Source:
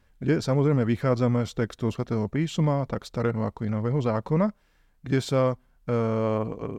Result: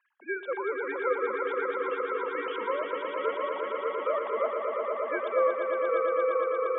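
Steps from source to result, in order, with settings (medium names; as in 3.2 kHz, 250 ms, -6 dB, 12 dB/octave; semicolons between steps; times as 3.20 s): formants replaced by sine waves; high-pass 610 Hz 24 dB/octave; treble shelf 2.6 kHz -12 dB; echo with a slow build-up 116 ms, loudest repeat 5, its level -6.5 dB; trim +1.5 dB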